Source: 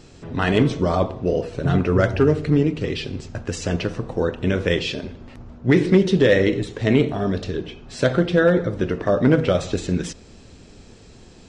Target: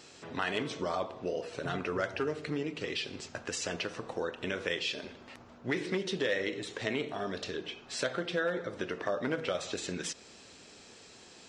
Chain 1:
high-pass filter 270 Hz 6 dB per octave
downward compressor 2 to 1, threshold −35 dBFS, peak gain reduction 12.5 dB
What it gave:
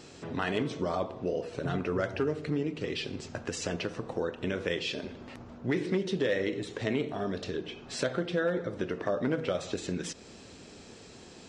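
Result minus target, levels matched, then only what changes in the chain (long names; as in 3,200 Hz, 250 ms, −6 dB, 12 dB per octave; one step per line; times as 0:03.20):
250 Hz band +3.0 dB
change: high-pass filter 950 Hz 6 dB per octave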